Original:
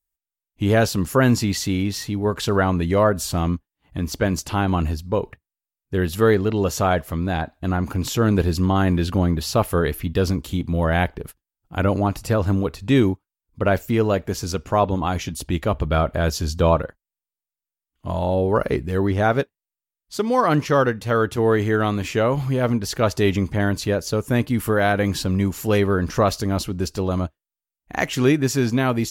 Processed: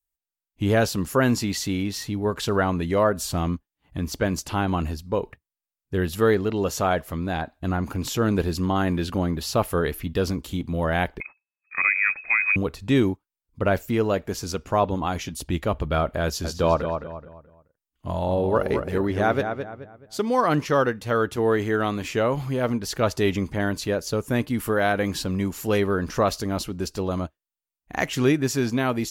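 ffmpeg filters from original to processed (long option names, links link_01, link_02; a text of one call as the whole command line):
ffmpeg -i in.wav -filter_complex "[0:a]asettb=1/sr,asplit=3[link_01][link_02][link_03];[link_01]atrim=end=11.204[link_04];[link_02]atrim=start=11.2:end=12.56,asetpts=PTS-STARTPTS,afade=type=in:duration=0.004:curve=qsin,afade=type=out:start_time=1.356:duration=0.004:curve=qsin,lowpass=frequency=2200:width_type=q:width=0.5098,lowpass=frequency=2200:width_type=q:width=0.6013,lowpass=frequency=2200:width_type=q:width=0.9,lowpass=frequency=2200:width_type=q:width=2.563,afreqshift=-2600[link_05];[link_03]atrim=start=12.556[link_06];[link_04][link_05]acrossfade=duration=0.004:curve1=hsin:curve2=qsin[link_07];[link_07][link_06]acrossfade=duration=0.004:curve1=qsin:curve2=hsin,asettb=1/sr,asplit=3[link_08][link_09][link_10];[link_08]atrim=end=16.234[link_11];[link_09]atrim=start=16.23:end=20.2,asetpts=PTS-STARTPTS,afade=type=in:duration=0.004:curve=qsin,afade=type=out:start_time=3.966:duration=0.004:curve=qsin,asplit=2[link_12][link_13];[link_13]adelay=214,lowpass=frequency=3000:poles=1,volume=-7dB,asplit=2[link_14][link_15];[link_15]adelay=214,lowpass=frequency=3000:poles=1,volume=0.33,asplit=2[link_16][link_17];[link_17]adelay=214,lowpass=frequency=3000:poles=1,volume=0.33,asplit=2[link_18][link_19];[link_19]adelay=214,lowpass=frequency=3000:poles=1,volume=0.33[link_20];[link_12][link_14][link_16][link_18][link_20]amix=inputs=5:normalize=0,atrim=end_sample=175077[link_21];[link_10]atrim=start=20.196[link_22];[link_11][link_21]acrossfade=duration=0.004:curve1=hsin:curve2=qsin[link_23];[link_23][link_22]acrossfade=duration=0.004:curve1=qsin:curve2=hsin,adynamicequalizer=threshold=0.02:dfrequency=100:dqfactor=0.91:tfrequency=100:tqfactor=0.91:attack=5:release=100:ratio=0.375:range=3:mode=cutabove:tftype=bell,volume=-2.5dB" out.wav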